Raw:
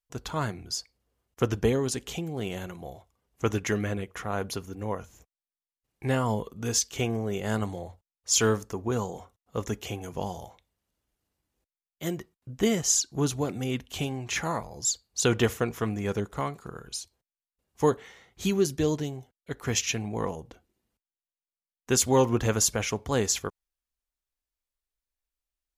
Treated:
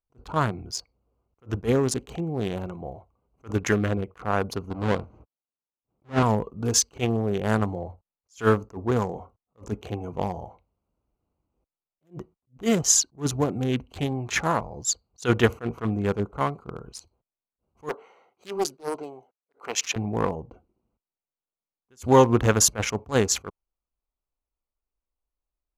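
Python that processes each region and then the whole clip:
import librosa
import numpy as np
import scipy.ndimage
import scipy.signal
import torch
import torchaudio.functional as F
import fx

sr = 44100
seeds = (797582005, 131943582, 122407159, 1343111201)

y = fx.chain(x, sr, fx.halfwave_hold(),
    fx.highpass(hz=110.0, slope=6),
    fx.spacing_loss(db_at_10k=23), at=(4.7, 6.23))
y = fx.chain(y, sr, fx.highpass(hz=500.0, slope=12),
    fx.doppler_dist(depth_ms=0.45), at=(17.89, 19.96))
y = fx.wiener(y, sr, points=25)
y = fx.peak_eq(y, sr, hz=1300.0, db=5.0, octaves=1.3)
y = fx.attack_slew(y, sr, db_per_s=320.0)
y = y * librosa.db_to_amplitude(5.0)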